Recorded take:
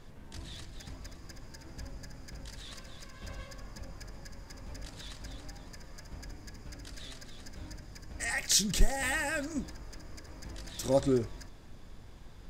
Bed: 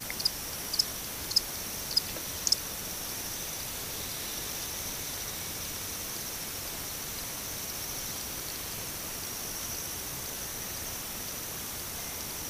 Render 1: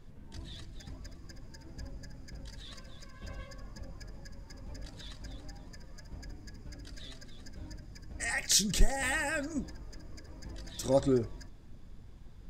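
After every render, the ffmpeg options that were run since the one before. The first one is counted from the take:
-af "afftdn=nr=8:nf=-50"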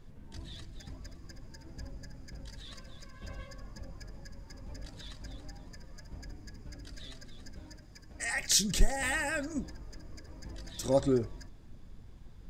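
-filter_complex "[0:a]asettb=1/sr,asplit=3[a][b][c];[a]atrim=end=7.594[d];[b]atrim=start=7.59:end=8.36,asetpts=PTS-STARTPTS,afade=t=in:d=0.004:c=qsin,afade=t=out:st=0.766:d=0.004:c=qsin,lowshelf=f=270:g=-6.5[e];[c]atrim=start=8.356[f];[d][e]acrossfade=d=0.004:c1=hsin:c2=qsin[g];[g][f]acrossfade=d=0.004:c1=qsin:c2=hsin"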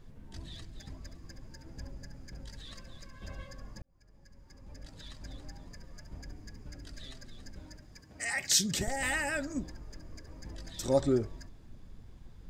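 -filter_complex "[0:a]asettb=1/sr,asplit=3[a][b][c];[a]atrim=end=8.014[d];[b]atrim=start=8.01:end=8.88,asetpts=PTS-STARTPTS,afade=t=in:d=0.004:c=qsin,afade=t=out:st=0.866:d=0.004:c=qsin,highpass=f=72:w=0.5412,highpass=f=72:w=1.3066[e];[c]atrim=start=8.876[f];[d][e]acrossfade=d=0.004:c1=hsin:c2=qsin[g];[g][f]acrossfade=d=0.004:c1=qsin:c2=hsin,asplit=2[h][i];[h]atrim=end=3.82,asetpts=PTS-STARTPTS,afade=t=out:st=3.816:d=0.004:c=hsin[j];[i]atrim=start=3.82,asetpts=PTS-STARTPTS,afade=t=in:d=1.51[k];[j][k]concat=n=2:v=0:a=1"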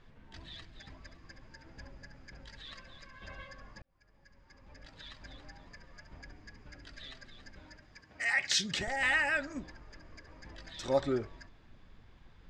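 -af "lowpass=2.9k,tiltshelf=f=720:g=-7.5"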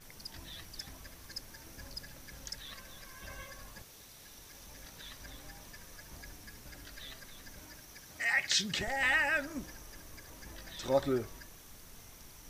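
-filter_complex "[1:a]volume=-18dB[a];[0:a][a]amix=inputs=2:normalize=0"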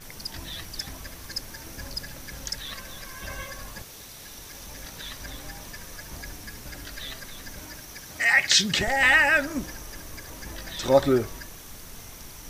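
-af "volume=10.5dB"

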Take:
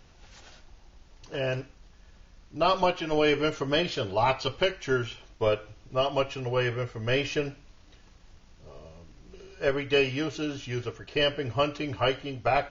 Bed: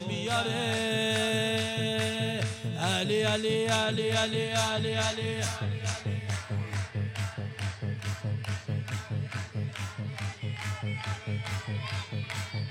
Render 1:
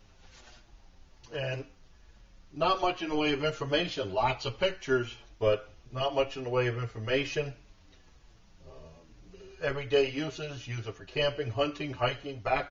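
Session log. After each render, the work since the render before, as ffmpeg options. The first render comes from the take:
-filter_complex "[0:a]asplit=2[a][b];[b]adelay=6.9,afreqshift=-1.3[c];[a][c]amix=inputs=2:normalize=1"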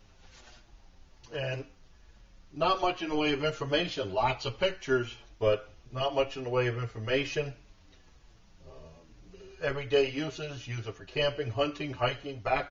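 -af anull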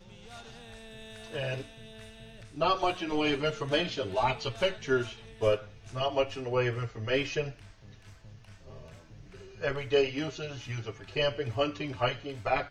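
-filter_complex "[1:a]volume=-19.5dB[a];[0:a][a]amix=inputs=2:normalize=0"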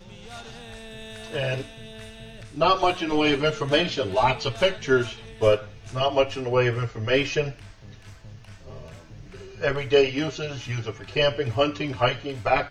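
-af "volume=7dB"

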